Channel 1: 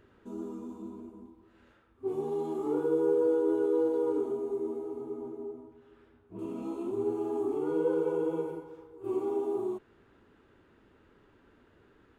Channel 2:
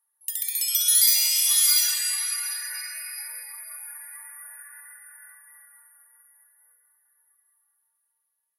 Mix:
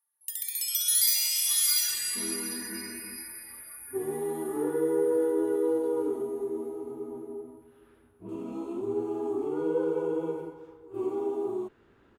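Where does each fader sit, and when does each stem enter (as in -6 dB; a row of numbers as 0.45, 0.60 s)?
+0.5, -5.5 dB; 1.90, 0.00 s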